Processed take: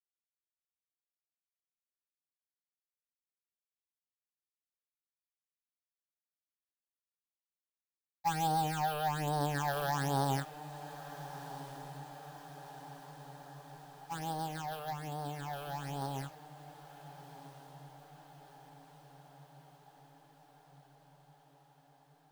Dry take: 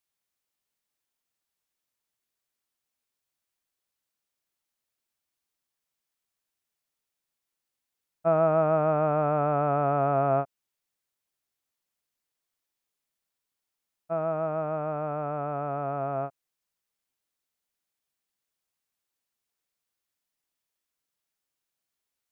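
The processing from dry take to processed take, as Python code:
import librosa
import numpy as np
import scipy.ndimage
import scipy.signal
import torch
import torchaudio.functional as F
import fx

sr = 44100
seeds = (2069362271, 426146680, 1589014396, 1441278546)

y = fx.wiener(x, sr, points=25)
y = fx.high_shelf(y, sr, hz=2300.0, db=-6.0)
y = fx.hum_notches(y, sr, base_hz=60, count=9)
y = fx.formant_shift(y, sr, semitones=4)
y = fx.quant_companded(y, sr, bits=4)
y = fx.phaser_stages(y, sr, stages=8, low_hz=250.0, high_hz=2300.0, hz=1.2, feedback_pct=35)
y = fx.echo_diffused(y, sr, ms=1416, feedback_pct=64, wet_db=-13.5)
y = y * librosa.db_to_amplitude(-5.0)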